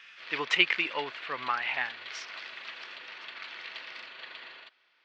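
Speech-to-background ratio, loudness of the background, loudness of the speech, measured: 12.5 dB, −41.5 LKFS, −29.0 LKFS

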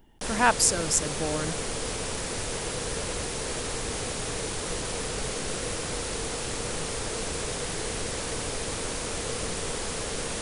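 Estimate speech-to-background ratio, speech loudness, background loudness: 6.0 dB, −25.0 LKFS, −31.0 LKFS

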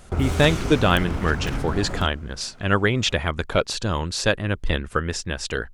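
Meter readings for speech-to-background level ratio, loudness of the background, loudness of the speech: 6.0 dB, −29.0 LKFS, −23.0 LKFS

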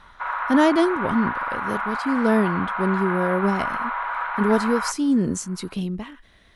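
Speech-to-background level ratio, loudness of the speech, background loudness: 4.0 dB, −23.0 LKFS, −27.0 LKFS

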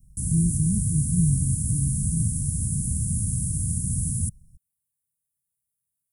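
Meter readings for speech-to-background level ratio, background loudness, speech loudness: −1.0 dB, −26.0 LKFS, −27.0 LKFS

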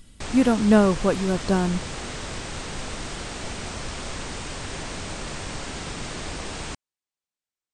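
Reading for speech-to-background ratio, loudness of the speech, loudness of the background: 11.5 dB, −21.5 LKFS, −33.0 LKFS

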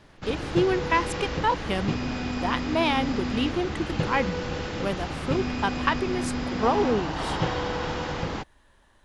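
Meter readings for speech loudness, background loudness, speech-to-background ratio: −28.0 LKFS, −30.0 LKFS, 2.0 dB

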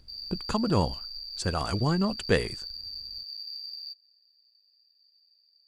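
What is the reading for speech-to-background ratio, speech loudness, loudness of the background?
8.0 dB, −29.0 LKFS, −37.0 LKFS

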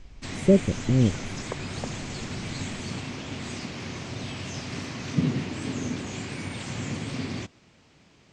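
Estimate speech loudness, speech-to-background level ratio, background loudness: −23.5 LKFS, 9.5 dB, −33.0 LKFS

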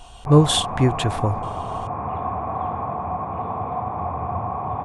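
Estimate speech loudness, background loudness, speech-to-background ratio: −19.5 LKFS, −27.5 LKFS, 8.0 dB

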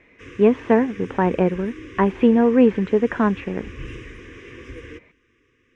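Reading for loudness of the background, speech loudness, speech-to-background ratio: −39.0 LKFS, −19.5 LKFS, 19.5 dB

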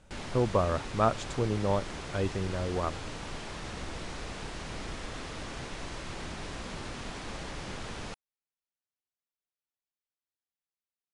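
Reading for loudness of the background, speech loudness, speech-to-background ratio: −40.0 LKFS, −31.0 LKFS, 9.0 dB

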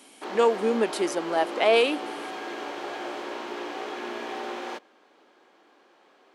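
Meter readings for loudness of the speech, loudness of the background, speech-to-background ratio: −24.5 LKFS, −35.0 LKFS, 10.5 dB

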